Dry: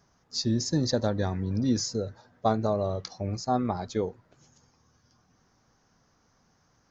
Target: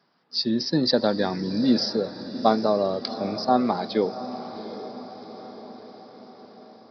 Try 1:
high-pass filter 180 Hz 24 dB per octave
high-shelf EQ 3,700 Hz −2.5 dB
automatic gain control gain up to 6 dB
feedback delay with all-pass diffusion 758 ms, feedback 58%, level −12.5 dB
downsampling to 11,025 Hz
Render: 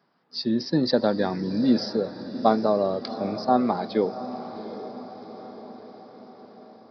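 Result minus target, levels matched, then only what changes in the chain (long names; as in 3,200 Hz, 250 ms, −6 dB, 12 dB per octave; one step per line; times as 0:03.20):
8,000 Hz band −6.0 dB
change: high-shelf EQ 3,700 Hz +7.5 dB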